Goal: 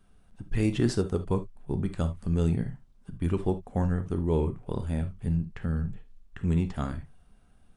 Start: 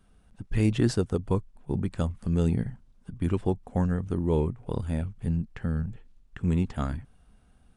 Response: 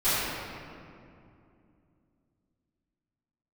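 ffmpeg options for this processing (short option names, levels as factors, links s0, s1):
-filter_complex "[0:a]asplit=2[s0][s1];[1:a]atrim=start_sample=2205,atrim=end_sample=3528[s2];[s1][s2]afir=irnorm=-1:irlink=0,volume=0.119[s3];[s0][s3]amix=inputs=2:normalize=0,volume=0.794"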